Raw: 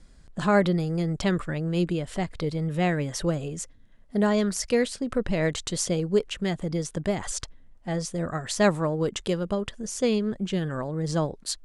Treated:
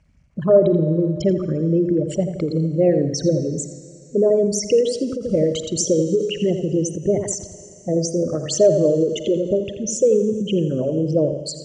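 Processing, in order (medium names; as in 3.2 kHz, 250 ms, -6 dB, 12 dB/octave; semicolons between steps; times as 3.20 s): resonances exaggerated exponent 3; high-order bell 1.2 kHz -13.5 dB; in parallel at -0.5 dB: peak limiter -21.5 dBFS, peak gain reduction 8.5 dB; on the sum: Schroeder reverb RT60 2.7 s, DRR 14 dB; vibrato 3.1 Hz 14 cents; bit crusher 12-bit; cabinet simulation 100–8600 Hz, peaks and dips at 590 Hz +8 dB, 2.2 kHz +8 dB, 3.7 kHz -10 dB, 6 kHz +4 dB; on a send: filtered feedback delay 84 ms, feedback 40%, low-pass 2.3 kHz, level -8 dB; on the sum: endings held to a fixed fall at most 130 dB/s; trim +2 dB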